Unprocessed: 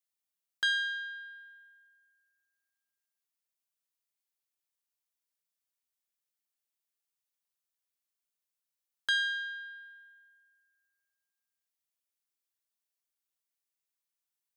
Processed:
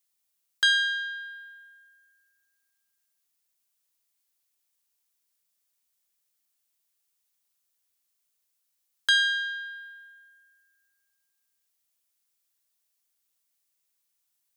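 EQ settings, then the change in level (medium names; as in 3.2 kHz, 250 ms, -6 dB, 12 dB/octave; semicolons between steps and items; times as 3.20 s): treble shelf 3.2 kHz +7 dB; +5.0 dB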